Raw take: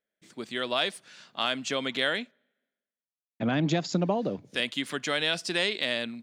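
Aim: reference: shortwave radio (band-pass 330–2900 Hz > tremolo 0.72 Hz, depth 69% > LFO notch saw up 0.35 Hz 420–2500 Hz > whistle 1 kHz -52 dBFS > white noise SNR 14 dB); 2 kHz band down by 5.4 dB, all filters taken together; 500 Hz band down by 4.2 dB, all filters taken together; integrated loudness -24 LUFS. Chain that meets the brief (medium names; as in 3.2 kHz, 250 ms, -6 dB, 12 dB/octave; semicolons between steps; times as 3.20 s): band-pass 330–2900 Hz; peaking EQ 500 Hz -4 dB; peaking EQ 2 kHz -5.5 dB; tremolo 0.72 Hz, depth 69%; LFO notch saw up 0.35 Hz 420–2500 Hz; whistle 1 kHz -52 dBFS; white noise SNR 14 dB; trim +17.5 dB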